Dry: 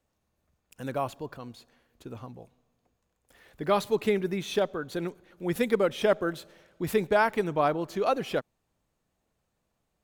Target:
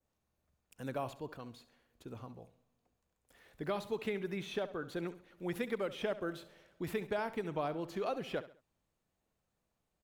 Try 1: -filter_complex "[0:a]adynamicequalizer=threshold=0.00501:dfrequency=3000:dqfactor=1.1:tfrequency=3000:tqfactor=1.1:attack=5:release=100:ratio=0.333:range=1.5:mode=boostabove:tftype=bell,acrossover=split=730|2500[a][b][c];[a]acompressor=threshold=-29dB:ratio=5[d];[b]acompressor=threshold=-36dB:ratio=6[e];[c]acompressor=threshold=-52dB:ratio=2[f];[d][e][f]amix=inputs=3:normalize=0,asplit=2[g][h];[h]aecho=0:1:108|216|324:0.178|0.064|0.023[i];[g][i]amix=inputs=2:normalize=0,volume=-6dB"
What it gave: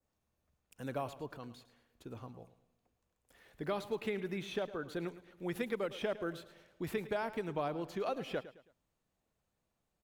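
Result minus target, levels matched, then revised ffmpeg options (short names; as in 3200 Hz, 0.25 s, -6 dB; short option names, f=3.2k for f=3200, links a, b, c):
echo 40 ms late
-filter_complex "[0:a]adynamicequalizer=threshold=0.00501:dfrequency=3000:dqfactor=1.1:tfrequency=3000:tqfactor=1.1:attack=5:release=100:ratio=0.333:range=1.5:mode=boostabove:tftype=bell,acrossover=split=730|2500[a][b][c];[a]acompressor=threshold=-29dB:ratio=5[d];[b]acompressor=threshold=-36dB:ratio=6[e];[c]acompressor=threshold=-52dB:ratio=2[f];[d][e][f]amix=inputs=3:normalize=0,asplit=2[g][h];[h]aecho=0:1:68|136|204:0.178|0.064|0.023[i];[g][i]amix=inputs=2:normalize=0,volume=-6dB"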